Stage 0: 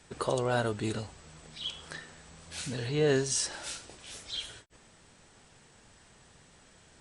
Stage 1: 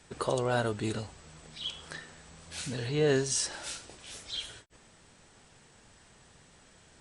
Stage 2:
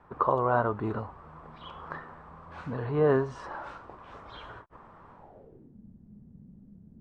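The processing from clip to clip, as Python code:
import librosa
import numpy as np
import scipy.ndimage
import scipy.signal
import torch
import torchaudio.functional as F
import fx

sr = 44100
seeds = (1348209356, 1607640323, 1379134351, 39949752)

y1 = x
y2 = fx.rider(y1, sr, range_db=5, speed_s=2.0)
y2 = fx.filter_sweep_lowpass(y2, sr, from_hz=1100.0, to_hz=210.0, start_s=5.13, end_s=5.78, q=4.5)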